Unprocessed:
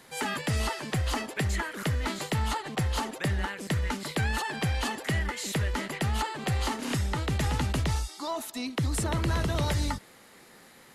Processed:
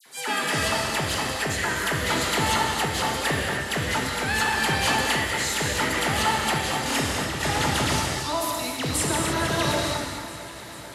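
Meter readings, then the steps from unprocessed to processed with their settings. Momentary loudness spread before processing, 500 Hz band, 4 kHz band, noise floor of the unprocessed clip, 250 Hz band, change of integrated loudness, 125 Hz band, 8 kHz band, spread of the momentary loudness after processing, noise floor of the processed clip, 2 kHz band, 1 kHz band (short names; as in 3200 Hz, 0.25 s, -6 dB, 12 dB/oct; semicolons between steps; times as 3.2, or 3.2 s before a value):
3 LU, +7.0 dB, +10.0 dB, -54 dBFS, +3.5 dB, +6.0 dB, -2.0 dB, +10.0 dB, 5 LU, -39 dBFS, +9.5 dB, +8.5 dB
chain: HPF 130 Hz 6 dB/oct; low shelf 330 Hz -8.5 dB; vibrato 8.2 Hz 14 cents; dispersion lows, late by 60 ms, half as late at 2200 Hz; random-step tremolo; on a send: echo with dull and thin repeats by turns 0.222 s, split 2100 Hz, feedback 84%, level -13.5 dB; on the sum: non-linear reverb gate 0.32 s flat, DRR -0.5 dB; gain +8.5 dB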